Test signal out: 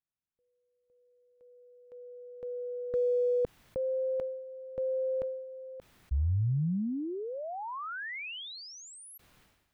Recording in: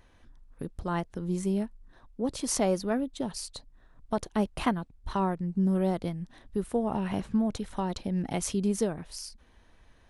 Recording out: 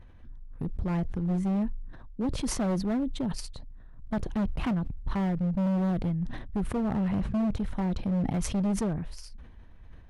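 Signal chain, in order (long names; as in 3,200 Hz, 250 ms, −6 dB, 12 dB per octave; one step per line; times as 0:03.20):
bass and treble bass +11 dB, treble −12 dB
hard clipping −22 dBFS
level that may fall only so fast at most 50 dB per second
level −2.5 dB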